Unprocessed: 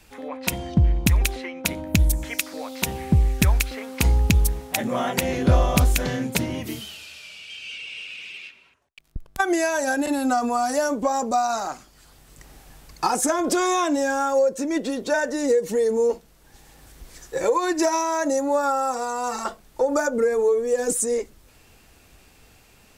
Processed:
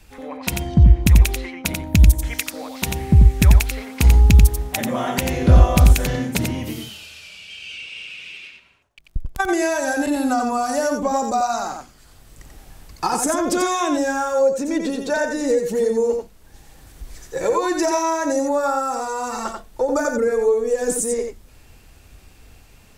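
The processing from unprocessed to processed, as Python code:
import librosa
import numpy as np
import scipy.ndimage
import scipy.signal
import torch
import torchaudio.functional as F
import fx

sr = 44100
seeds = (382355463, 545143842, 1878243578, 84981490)

p1 = fx.low_shelf(x, sr, hz=110.0, db=9.5)
y = p1 + fx.echo_single(p1, sr, ms=89, db=-5.0, dry=0)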